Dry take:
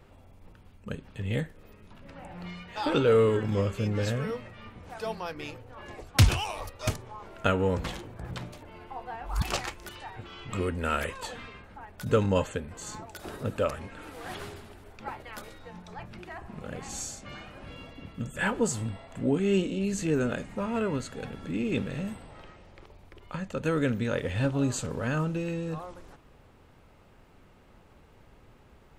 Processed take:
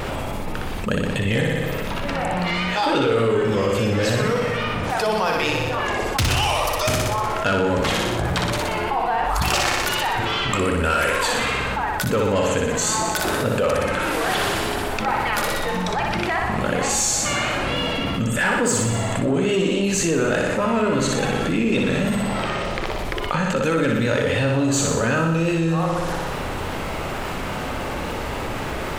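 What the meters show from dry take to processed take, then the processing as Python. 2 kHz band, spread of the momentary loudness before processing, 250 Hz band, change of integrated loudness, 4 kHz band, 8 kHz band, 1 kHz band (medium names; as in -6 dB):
+14.5 dB, 19 LU, +9.0 dB, +9.0 dB, +14.5 dB, +15.5 dB, +15.0 dB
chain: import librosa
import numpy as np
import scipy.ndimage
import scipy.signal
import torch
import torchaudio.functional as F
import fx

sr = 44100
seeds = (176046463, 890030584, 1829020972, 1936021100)

p1 = fx.low_shelf(x, sr, hz=250.0, db=-6.5)
p2 = fx.hum_notches(p1, sr, base_hz=50, count=10)
p3 = fx.rider(p2, sr, range_db=4, speed_s=0.5)
p4 = p2 + (p3 * 10.0 ** (2.0 / 20.0))
p5 = fx.vibrato(p4, sr, rate_hz=3.5, depth_cents=50.0)
p6 = 10.0 ** (-16.0 / 20.0) * np.tanh(p5 / 10.0 ** (-16.0 / 20.0))
p7 = p6 + fx.room_flutter(p6, sr, wall_m=10.4, rt60_s=0.86, dry=0)
y = fx.env_flatten(p7, sr, amount_pct=70)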